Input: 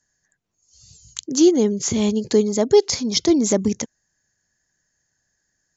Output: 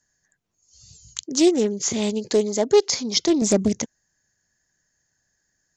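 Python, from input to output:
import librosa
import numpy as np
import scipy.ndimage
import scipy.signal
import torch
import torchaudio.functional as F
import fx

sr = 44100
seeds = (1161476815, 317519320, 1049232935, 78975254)

y = fx.highpass(x, sr, hz=330.0, slope=6, at=(1.23, 3.42))
y = fx.doppler_dist(y, sr, depth_ms=0.27)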